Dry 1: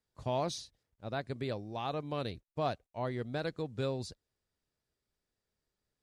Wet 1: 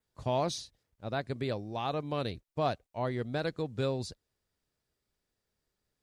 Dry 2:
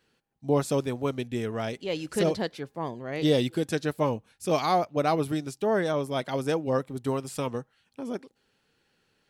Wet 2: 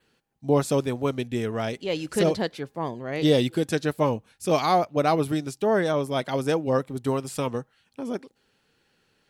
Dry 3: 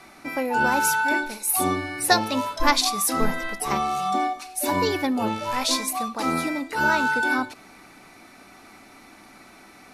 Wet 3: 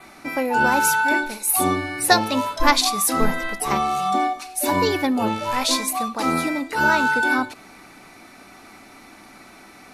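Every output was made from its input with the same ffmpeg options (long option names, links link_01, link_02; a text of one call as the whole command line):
ffmpeg -i in.wav -af "adynamicequalizer=threshold=0.00282:dfrequency=5400:dqfactor=4.3:tfrequency=5400:tqfactor=4.3:attack=5:release=100:ratio=0.375:range=1.5:mode=cutabove:tftype=bell,volume=3dB" out.wav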